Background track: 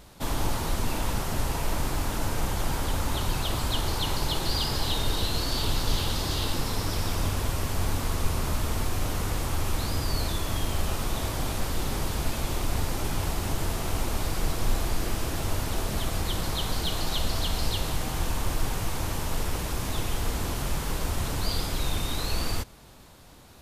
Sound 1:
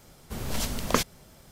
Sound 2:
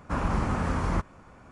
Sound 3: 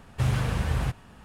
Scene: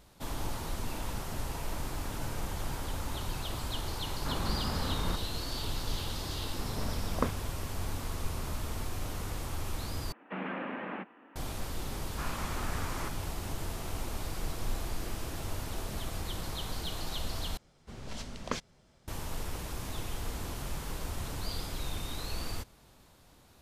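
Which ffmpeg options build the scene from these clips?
ffmpeg -i bed.wav -i cue0.wav -i cue1.wav -i cue2.wav -filter_complex "[3:a]asplit=2[link_01][link_02];[2:a]asplit=2[link_03][link_04];[1:a]asplit=2[link_05][link_06];[0:a]volume=-8.5dB[link_07];[link_01]acompressor=threshold=-30dB:ratio=6:attack=3.2:release=140:knee=1:detection=peak[link_08];[link_05]lowpass=1300[link_09];[link_02]highpass=frequency=190:width_type=q:width=0.5412,highpass=frequency=190:width_type=q:width=1.307,lowpass=frequency=2600:width_type=q:width=0.5176,lowpass=frequency=2600:width_type=q:width=0.7071,lowpass=frequency=2600:width_type=q:width=1.932,afreqshift=61[link_10];[link_04]tiltshelf=frequency=1100:gain=-8.5[link_11];[link_06]lowpass=6400[link_12];[link_07]asplit=3[link_13][link_14][link_15];[link_13]atrim=end=10.124[link_16];[link_10]atrim=end=1.24,asetpts=PTS-STARTPTS,volume=-3.5dB[link_17];[link_14]atrim=start=11.356:end=17.574[link_18];[link_12]atrim=end=1.51,asetpts=PTS-STARTPTS,volume=-10.5dB[link_19];[link_15]atrim=start=19.076[link_20];[link_08]atrim=end=1.24,asetpts=PTS-STARTPTS,volume=-12dB,afade=type=in:duration=0.004:curve=hsin,afade=type=out:start_time=1.236:duration=0.004:curve=hsin,adelay=1860[link_21];[link_03]atrim=end=1.51,asetpts=PTS-STARTPTS,volume=-8dB,afade=type=in:duration=0.004:curve=hsin,afade=type=out:start_time=1.506:duration=0.004:curve=hsin,adelay=4150[link_22];[link_09]atrim=end=1.51,asetpts=PTS-STARTPTS,volume=-5.5dB,afade=type=in:duration=0.004:curve=hsin,afade=type=out:start_time=1.506:duration=0.004:curve=hsin,adelay=6280[link_23];[link_11]atrim=end=1.51,asetpts=PTS-STARTPTS,volume=-8.5dB,afade=type=in:duration=0.004:curve=hsin,afade=type=out:start_time=1.506:duration=0.004:curve=hsin,adelay=12080[link_24];[link_16][link_17]acrossfade=duration=0.004:curve1=hsin:curve2=hsin[link_25];[link_25][link_18]acrossfade=duration=0.004:curve1=hsin:curve2=hsin[link_26];[link_26][link_19]acrossfade=duration=0.004:curve1=hsin:curve2=hsin[link_27];[link_27][link_20]acrossfade=duration=0.004:curve1=hsin:curve2=hsin[link_28];[link_28][link_21][link_22][link_23][link_24]amix=inputs=5:normalize=0" out.wav

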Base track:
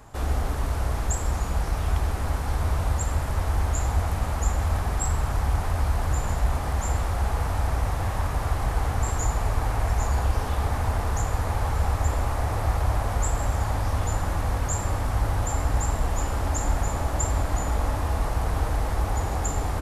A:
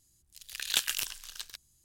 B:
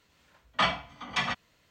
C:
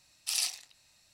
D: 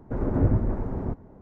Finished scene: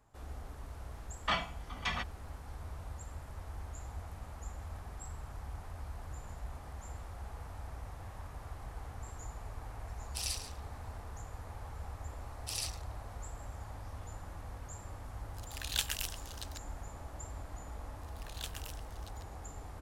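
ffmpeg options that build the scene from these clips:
ffmpeg -i bed.wav -i cue0.wav -i cue1.wav -i cue2.wav -filter_complex "[3:a]asplit=2[link_01][link_02];[1:a]asplit=2[link_03][link_04];[0:a]volume=-20dB[link_05];[link_01]aecho=1:1:136:0.251[link_06];[2:a]atrim=end=1.7,asetpts=PTS-STARTPTS,volume=-7dB,afade=type=in:duration=0.004:curve=hsin,afade=type=out:start_time=1.696:duration=0.004:curve=hsin,adelay=690[link_07];[link_06]atrim=end=1.13,asetpts=PTS-STARTPTS,volume=-7.5dB,afade=type=in:duration=0.004:curve=hsin,afade=type=out:start_time=1.126:duration=0.004:curve=hsin,adelay=9880[link_08];[link_02]atrim=end=1.13,asetpts=PTS-STARTPTS,volume=-8dB,afade=type=in:duration=0.004:curve=hsin,afade=type=out:start_time=1.126:duration=0.004:curve=hsin,adelay=538020S[link_09];[link_03]atrim=end=1.84,asetpts=PTS-STARTPTS,volume=-5.5dB,afade=type=in:duration=0.004:curve=hsin,afade=type=out:start_time=1.836:duration=0.004:curve=hsin,adelay=15020[link_10];[link_04]atrim=end=1.84,asetpts=PTS-STARTPTS,volume=-16dB,afade=type=in:duration=0.004:curve=hsin,afade=type=out:start_time=1.836:duration=0.004:curve=hsin,adelay=17670[link_11];[link_05][link_07][link_08][link_09][link_10][link_11]amix=inputs=6:normalize=0" out.wav

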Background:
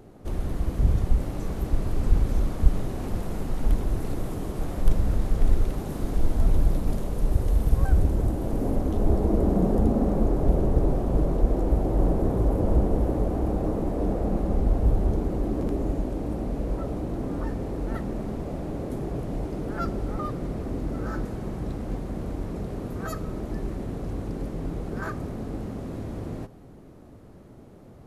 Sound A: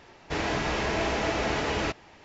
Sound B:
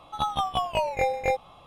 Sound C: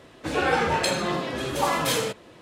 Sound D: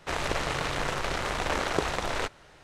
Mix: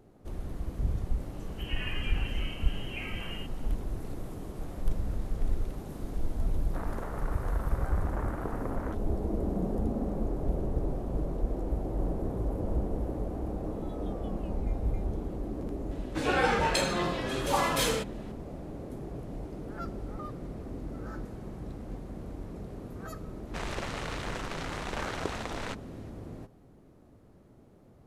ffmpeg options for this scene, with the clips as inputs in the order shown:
ffmpeg -i bed.wav -i cue0.wav -i cue1.wav -i cue2.wav -i cue3.wav -filter_complex "[3:a]asplit=2[link_01][link_02];[4:a]asplit=2[link_03][link_04];[0:a]volume=-9dB[link_05];[link_01]lowpass=frequency=2800:width_type=q:width=0.5098,lowpass=frequency=2800:width_type=q:width=0.6013,lowpass=frequency=2800:width_type=q:width=0.9,lowpass=frequency=2800:width_type=q:width=2.563,afreqshift=-3300[link_06];[link_03]lowpass=frequency=1500:width=0.5412,lowpass=frequency=1500:width=1.3066[link_07];[2:a]acompressor=threshold=-39dB:ratio=6:attack=3.2:release=140:knee=1:detection=peak[link_08];[link_02]aresample=32000,aresample=44100[link_09];[link_06]atrim=end=2.41,asetpts=PTS-STARTPTS,volume=-17dB,afade=type=in:duration=0.004:curve=hsin,afade=type=out:start_time=2.406:duration=0.004:curve=hsin,adelay=1340[link_10];[link_07]atrim=end=2.63,asetpts=PTS-STARTPTS,volume=-9dB,afade=type=in:duration=0.004:curve=hsin,afade=type=out:start_time=2.626:duration=0.004:curve=hsin,adelay=6670[link_11];[link_08]atrim=end=1.66,asetpts=PTS-STARTPTS,volume=-13.5dB,afade=type=in:duration=0.004:curve=hsin,afade=type=out:start_time=1.656:duration=0.004:curve=hsin,adelay=13700[link_12];[link_09]atrim=end=2.41,asetpts=PTS-STARTPTS,volume=-3.5dB,afade=type=in:duration=0.004:curve=hsin,afade=type=out:start_time=2.406:duration=0.004:curve=hsin,adelay=15910[link_13];[link_04]atrim=end=2.63,asetpts=PTS-STARTPTS,volume=-7.5dB,afade=type=in:duration=0.004:curve=hsin,afade=type=out:start_time=2.626:duration=0.004:curve=hsin,adelay=23470[link_14];[link_05][link_10][link_11][link_12][link_13][link_14]amix=inputs=6:normalize=0" out.wav

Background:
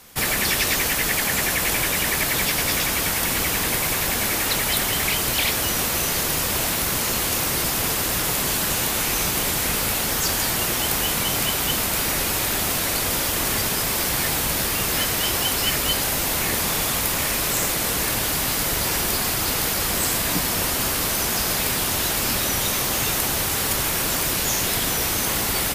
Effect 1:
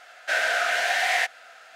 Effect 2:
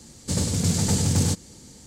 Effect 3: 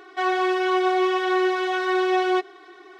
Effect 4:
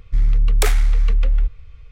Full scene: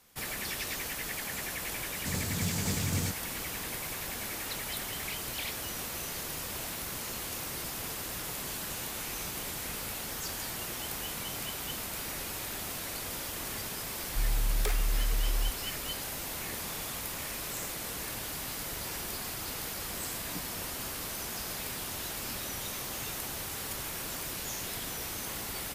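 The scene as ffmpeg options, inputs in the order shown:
ffmpeg -i bed.wav -i cue0.wav -i cue1.wav -i cue2.wav -i cue3.wav -filter_complex "[0:a]volume=-15dB[link_01];[2:a]atrim=end=1.86,asetpts=PTS-STARTPTS,volume=-10.5dB,afade=type=in:duration=0.004:curve=hsin,afade=type=out:start_time=1.856:duration=0.004:curve=hsin,adelay=1770[link_02];[4:a]atrim=end=1.91,asetpts=PTS-STARTPTS,volume=-14dB,afade=type=in:duration=0.004:curve=hsin,afade=type=out:start_time=1.906:duration=0.004:curve=hsin,adelay=14030[link_03];[link_01][link_02][link_03]amix=inputs=3:normalize=0" out.wav

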